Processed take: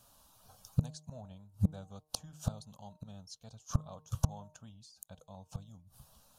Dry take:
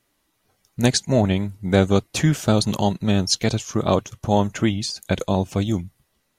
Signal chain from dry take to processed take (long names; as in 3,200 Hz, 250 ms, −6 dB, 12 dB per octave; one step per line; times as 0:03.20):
gate with flip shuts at −20 dBFS, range −36 dB
phaser with its sweep stopped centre 850 Hz, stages 4
hum removal 153.6 Hz, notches 7
level +8.5 dB